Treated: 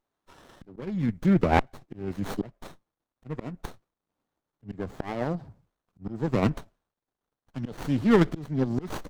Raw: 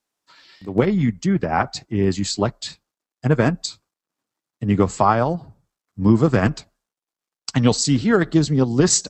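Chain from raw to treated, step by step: slow attack 673 ms; sliding maximum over 17 samples

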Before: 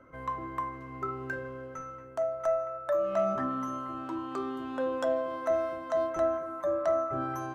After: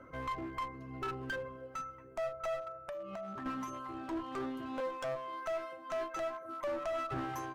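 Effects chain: reverb removal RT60 1.4 s; 4.80–6.45 s: high-pass 740 Hz 6 dB/octave; peak limiter -28.5 dBFS, peak gain reduction 9 dB; 2.74–3.46 s: compression 10:1, threshold -42 dBFS, peak gain reduction 10.5 dB; one-sided clip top -41.5 dBFS, bottom -31.5 dBFS; trim +2.5 dB

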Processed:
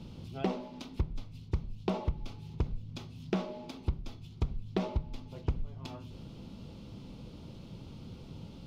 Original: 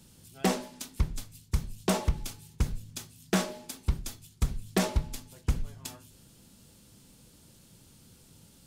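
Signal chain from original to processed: peaking EQ 1.7 kHz -13 dB 0.49 oct; compression 3:1, threshold -46 dBFS, peak gain reduction 18.5 dB; distance through air 290 m; trim +12 dB

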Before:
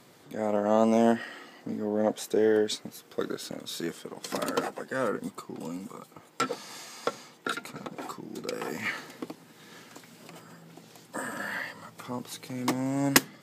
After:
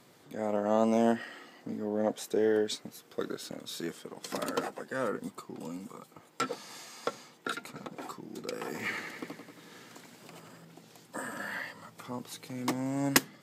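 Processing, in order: 8.65–10.65 s: modulated delay 91 ms, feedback 63%, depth 61 cents, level -6.5 dB; trim -3.5 dB

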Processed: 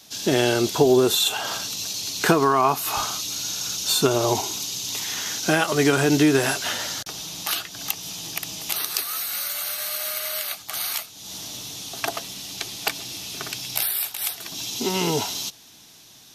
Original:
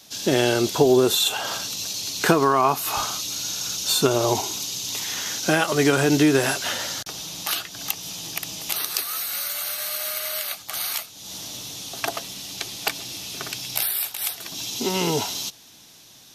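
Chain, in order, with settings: band-stop 540 Hz, Q 13

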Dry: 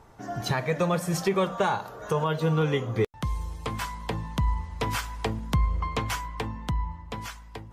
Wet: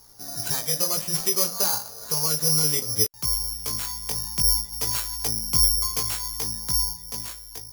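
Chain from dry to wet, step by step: chorus 0.59 Hz, delay 17 ms, depth 3.2 ms; careless resampling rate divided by 8×, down none, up zero stuff; trim -4.5 dB

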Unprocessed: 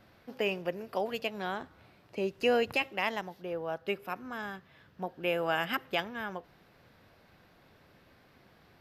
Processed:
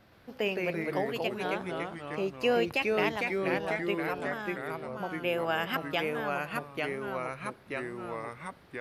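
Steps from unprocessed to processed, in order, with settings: ever faster or slower copies 116 ms, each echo -2 st, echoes 3

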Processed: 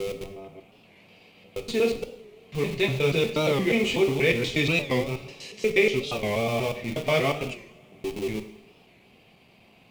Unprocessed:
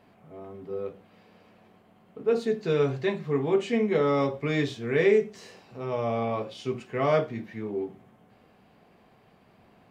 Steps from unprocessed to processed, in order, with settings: slices played last to first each 120 ms, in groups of 7; in parallel at -11.5 dB: Schmitt trigger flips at -33 dBFS; on the sum: resonant high shelf 2 kHz +6.5 dB, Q 3; two-slope reverb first 0.68 s, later 3 s, from -22 dB, DRR 7 dB; warped record 45 rpm, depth 160 cents

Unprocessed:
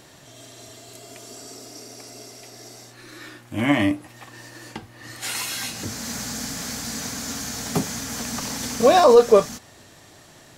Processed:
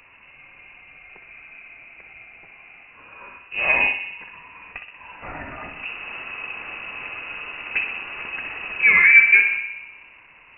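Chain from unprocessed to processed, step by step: filtered feedback delay 62 ms, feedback 70%, low-pass 1.9 kHz, level -6.5 dB; frequency inversion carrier 2.8 kHz; trim -1 dB

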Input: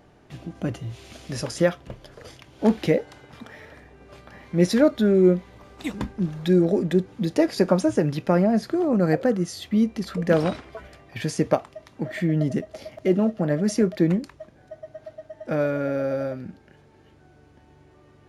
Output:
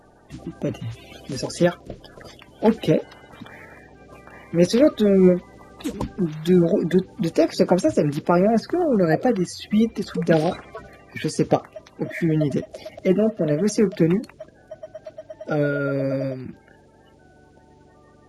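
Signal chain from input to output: coarse spectral quantiser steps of 30 dB; trim +2.5 dB

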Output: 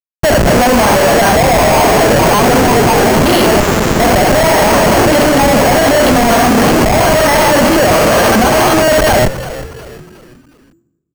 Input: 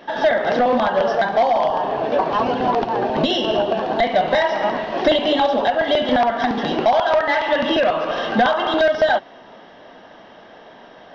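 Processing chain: fade-in on the opening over 1.45 s; de-hum 124.6 Hz, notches 11; compressor with a negative ratio -22 dBFS, ratio -1; Schmitt trigger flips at -26 dBFS; frequency-shifting echo 362 ms, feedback 41%, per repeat -86 Hz, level -14.5 dB; on a send at -20 dB: reverberation RT60 1.1 s, pre-delay 5 ms; on the sum: careless resampling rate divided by 6×, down filtered, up hold; loudness maximiser +17 dB; 3.60–4.00 s: sliding maximum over 33 samples; trim -2.5 dB

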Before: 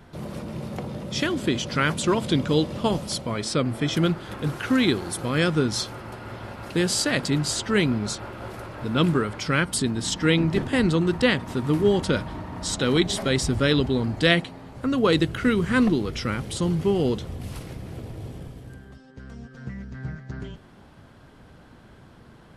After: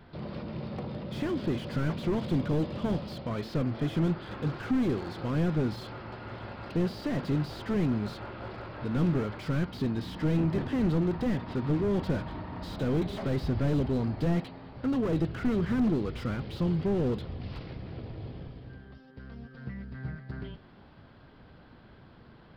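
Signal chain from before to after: resampled via 11.025 kHz; slew-rate limiter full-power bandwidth 30 Hz; trim -4 dB

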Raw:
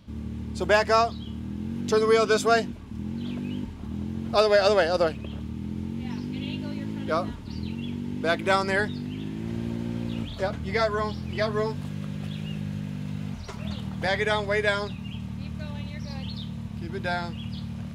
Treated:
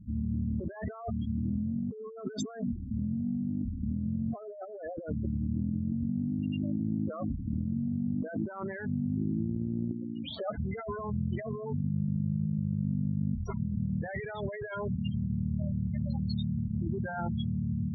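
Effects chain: 9.91–10.58 s: high-pass 580 Hz 6 dB/octave; spectral gate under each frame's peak -10 dB strong; compressor with a negative ratio -34 dBFS, ratio -1

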